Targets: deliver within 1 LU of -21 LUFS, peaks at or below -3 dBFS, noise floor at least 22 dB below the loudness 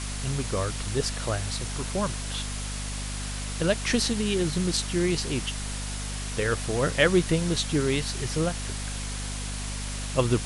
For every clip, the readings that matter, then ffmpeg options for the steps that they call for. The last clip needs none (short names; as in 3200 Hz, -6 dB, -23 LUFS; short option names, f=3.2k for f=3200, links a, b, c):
hum 50 Hz; harmonics up to 250 Hz; hum level -31 dBFS; noise floor -33 dBFS; noise floor target -50 dBFS; loudness -28.0 LUFS; peak -8.5 dBFS; loudness target -21.0 LUFS
-> -af "bandreject=f=50:t=h:w=6,bandreject=f=100:t=h:w=6,bandreject=f=150:t=h:w=6,bandreject=f=200:t=h:w=6,bandreject=f=250:t=h:w=6"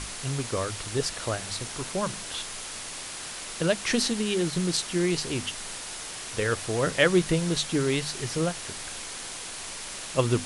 hum none; noise floor -38 dBFS; noise floor target -51 dBFS
-> -af "afftdn=nr=13:nf=-38"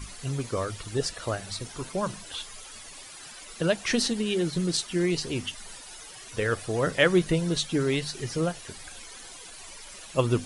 noise floor -45 dBFS; noise floor target -50 dBFS
-> -af "afftdn=nr=6:nf=-45"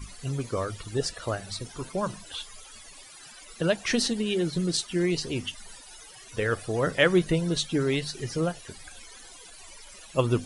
noise floor -48 dBFS; noise floor target -50 dBFS
-> -af "afftdn=nr=6:nf=-48"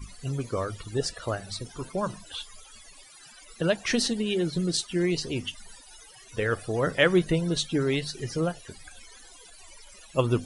noise floor -51 dBFS; loudness -28.0 LUFS; peak -8.5 dBFS; loudness target -21.0 LUFS
-> -af "volume=7dB,alimiter=limit=-3dB:level=0:latency=1"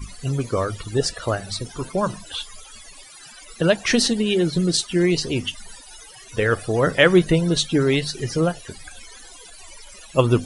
loudness -21.5 LUFS; peak -3.0 dBFS; noise floor -44 dBFS